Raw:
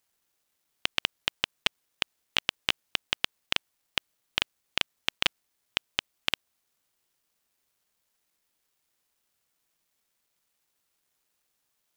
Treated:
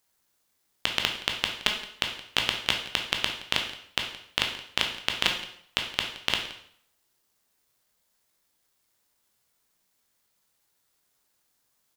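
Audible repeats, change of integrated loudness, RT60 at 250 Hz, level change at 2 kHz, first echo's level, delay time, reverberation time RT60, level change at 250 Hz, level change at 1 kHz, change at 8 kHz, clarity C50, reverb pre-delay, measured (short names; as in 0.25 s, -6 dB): 1, +2.5 dB, 0.60 s, +2.5 dB, -18.5 dB, 0.171 s, 0.65 s, +5.0 dB, +4.5 dB, +4.0 dB, 6.5 dB, 6 ms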